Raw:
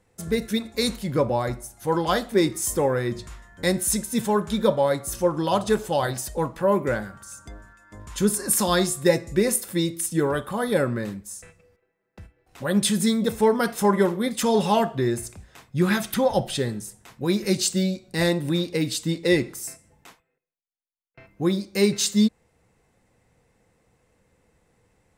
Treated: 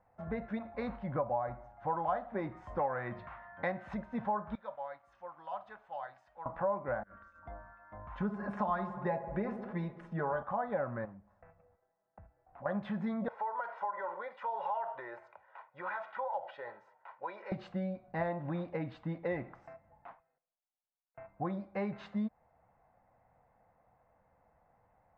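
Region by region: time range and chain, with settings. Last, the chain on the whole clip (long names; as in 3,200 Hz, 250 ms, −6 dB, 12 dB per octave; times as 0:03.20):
0:02.79–0:03.94: high-pass filter 97 Hz + parametric band 2,700 Hz +8 dB 2.3 octaves
0:04.55–0:06.46: first-order pre-emphasis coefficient 0.97 + centre clipping without the shift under −54.5 dBFS
0:07.03–0:07.43: compressor whose output falls as the input rises −42 dBFS, ratio −0.5 + phaser with its sweep stopped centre 330 Hz, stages 4
0:08.20–0:10.43: comb filter 4.8 ms, depth 61% + delay with a low-pass on its return 70 ms, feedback 68%, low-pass 1,100 Hz, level −12.5 dB
0:11.05–0:12.66: low-pass filter 1,200 Hz 6 dB per octave + downward compressor 1.5 to 1, threshold −52 dBFS
0:13.28–0:17.52: high-pass filter 670 Hz + comb filter 2.1 ms, depth 66% + downward compressor 4 to 1, threshold −30 dBFS
whole clip: Bessel low-pass filter 1,100 Hz, order 4; low shelf with overshoot 530 Hz −8.5 dB, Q 3; downward compressor 3 to 1, threshold −33 dBFS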